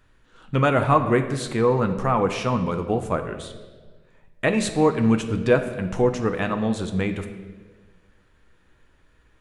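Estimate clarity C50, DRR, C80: 9.5 dB, 6.0 dB, 11.0 dB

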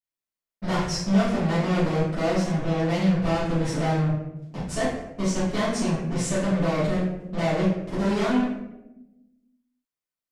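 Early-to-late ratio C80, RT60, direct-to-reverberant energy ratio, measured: 4.5 dB, 0.95 s, -13.5 dB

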